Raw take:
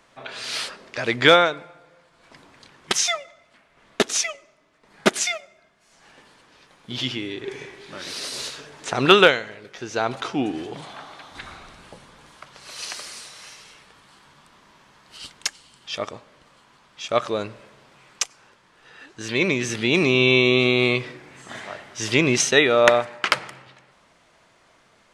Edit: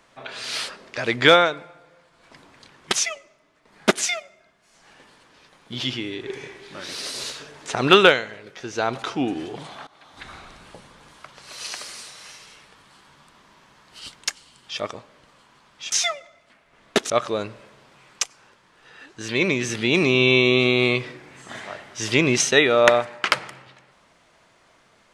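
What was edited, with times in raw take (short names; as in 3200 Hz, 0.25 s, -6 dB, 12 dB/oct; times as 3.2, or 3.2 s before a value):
2.96–4.14 move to 17.1
11.05–11.54 fade in, from -18 dB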